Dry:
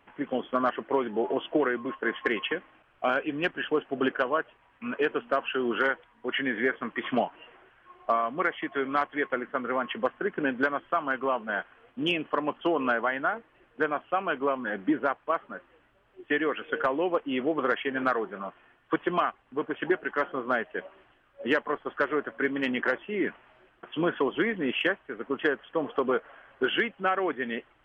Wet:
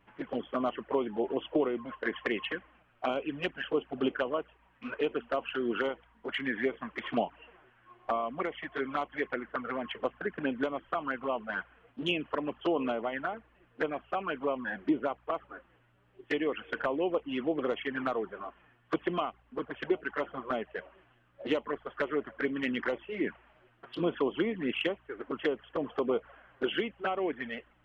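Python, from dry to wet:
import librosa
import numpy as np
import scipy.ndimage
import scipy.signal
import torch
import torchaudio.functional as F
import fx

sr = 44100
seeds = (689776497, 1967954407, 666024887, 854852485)

y = fx.add_hum(x, sr, base_hz=60, snr_db=35)
y = fx.env_flanger(y, sr, rest_ms=10.6, full_db=-22.5)
y = F.gain(torch.from_numpy(y), -1.5).numpy()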